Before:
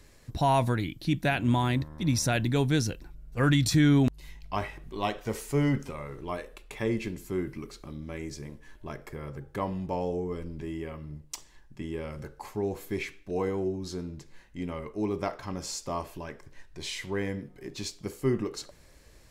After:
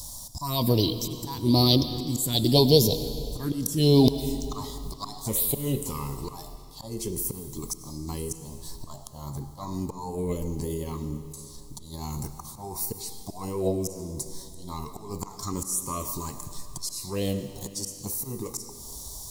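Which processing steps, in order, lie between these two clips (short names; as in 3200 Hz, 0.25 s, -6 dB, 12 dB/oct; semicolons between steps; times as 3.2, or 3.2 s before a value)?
EQ curve 1000 Hz 0 dB, 1500 Hz -24 dB, 2900 Hz +14 dB; auto swell 0.37 s; in parallel at -0.5 dB: compressor, threshold -41 dBFS, peak gain reduction 22.5 dB; on the sum: formant shift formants +5 st; envelope phaser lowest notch 350 Hz, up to 1500 Hz, full sweep at -22.5 dBFS; on a send at -10.5 dB: reverb RT60 2.6 s, pre-delay 56 ms; on the sum: gain +5.5 dB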